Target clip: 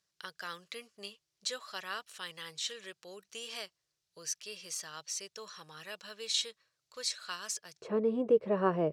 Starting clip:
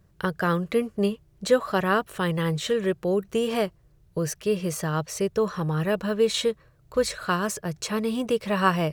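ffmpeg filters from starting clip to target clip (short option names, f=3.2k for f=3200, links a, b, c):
-af "asetnsamples=n=441:p=0,asendcmd='7.82 bandpass f 420',bandpass=f=5.2k:t=q:w=1.5:csg=0"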